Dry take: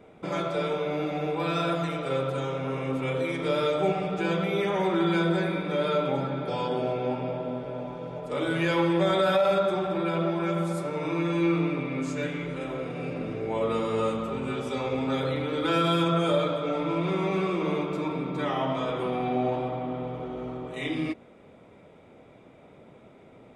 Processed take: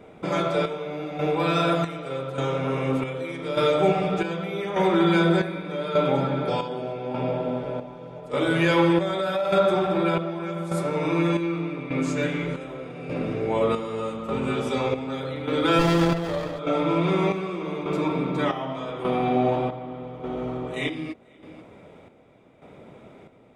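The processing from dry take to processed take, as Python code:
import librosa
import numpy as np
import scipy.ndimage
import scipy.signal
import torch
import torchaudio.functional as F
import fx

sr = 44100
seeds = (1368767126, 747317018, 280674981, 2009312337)

y = x + 10.0 ** (-22.0 / 20.0) * np.pad(x, (int(488 * sr / 1000.0), 0))[:len(x)]
y = fx.chopper(y, sr, hz=0.84, depth_pct=60, duty_pct=55)
y = fx.running_max(y, sr, window=17, at=(15.79, 16.59))
y = F.gain(torch.from_numpy(y), 5.0).numpy()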